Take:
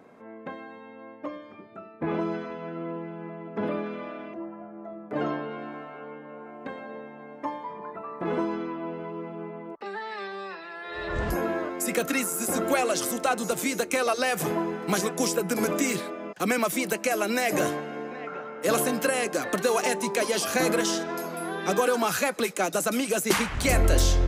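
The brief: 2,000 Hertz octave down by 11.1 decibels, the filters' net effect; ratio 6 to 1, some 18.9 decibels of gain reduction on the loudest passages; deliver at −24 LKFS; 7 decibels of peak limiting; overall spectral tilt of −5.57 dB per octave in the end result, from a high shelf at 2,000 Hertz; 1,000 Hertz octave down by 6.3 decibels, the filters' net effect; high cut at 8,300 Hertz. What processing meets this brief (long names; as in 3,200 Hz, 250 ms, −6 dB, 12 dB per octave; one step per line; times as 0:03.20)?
low-pass filter 8,300 Hz
parametric band 1,000 Hz −5 dB
high-shelf EQ 2,000 Hz −8 dB
parametric band 2,000 Hz −8 dB
downward compressor 6 to 1, threshold −39 dBFS
level +20 dB
brickwall limiter −14.5 dBFS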